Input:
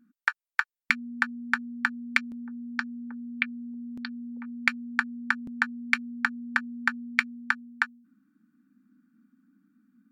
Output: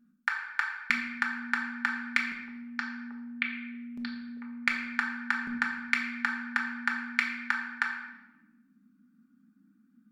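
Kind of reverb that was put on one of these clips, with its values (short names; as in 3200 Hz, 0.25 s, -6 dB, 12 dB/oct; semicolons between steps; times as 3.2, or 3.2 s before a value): shoebox room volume 540 m³, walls mixed, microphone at 1.3 m; gain -4 dB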